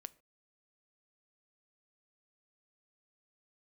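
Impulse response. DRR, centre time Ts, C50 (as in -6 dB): 15.0 dB, 2 ms, 22.5 dB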